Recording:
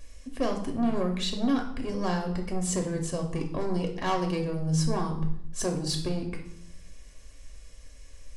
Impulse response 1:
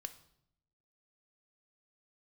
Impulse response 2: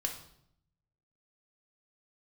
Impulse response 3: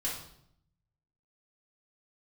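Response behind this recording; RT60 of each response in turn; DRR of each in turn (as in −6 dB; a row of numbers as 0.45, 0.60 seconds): 2; 0.75, 0.70, 0.70 seconds; 9.5, 2.5, −6.5 decibels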